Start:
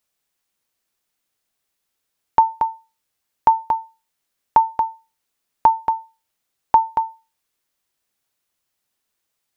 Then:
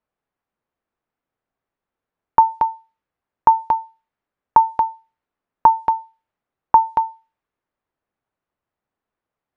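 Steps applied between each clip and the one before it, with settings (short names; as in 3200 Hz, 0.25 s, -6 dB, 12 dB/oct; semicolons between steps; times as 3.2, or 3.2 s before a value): low-pass opened by the level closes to 1300 Hz, open at -14 dBFS; gain +2 dB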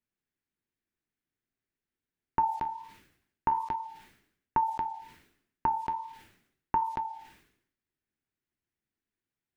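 band shelf 790 Hz -12 dB; flange 1.3 Hz, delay 7.2 ms, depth 7.6 ms, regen -61%; sustainer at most 82 dB/s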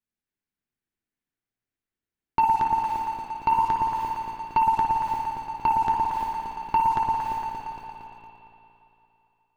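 echo with dull and thin repeats by turns 0.115 s, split 900 Hz, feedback 79%, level -8 dB; sample leveller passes 2; spring tank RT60 3 s, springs 53/57 ms, chirp 45 ms, DRR 1 dB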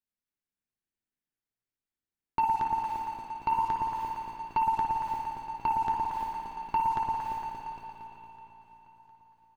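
feedback echo 0.707 s, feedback 55%, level -20.5 dB; gain -6 dB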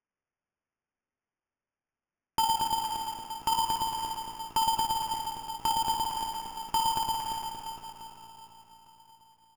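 sample-rate reducer 4000 Hz, jitter 0%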